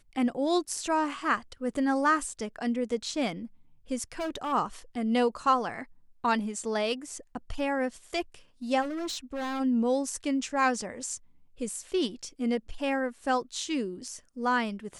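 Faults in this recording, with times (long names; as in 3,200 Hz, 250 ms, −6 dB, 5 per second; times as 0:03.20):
0:04.12–0:04.53: clipping −29 dBFS
0:08.81–0:09.61: clipping −30.5 dBFS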